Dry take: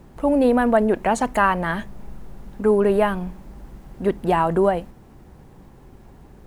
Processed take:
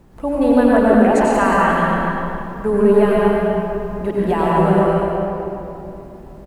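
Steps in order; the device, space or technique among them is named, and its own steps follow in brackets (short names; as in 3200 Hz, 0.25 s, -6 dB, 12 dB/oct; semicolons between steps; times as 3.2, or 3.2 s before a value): cave (echo 0.248 s -8.5 dB; reverb RT60 3.0 s, pre-delay 85 ms, DRR -5.5 dB); gain -2.5 dB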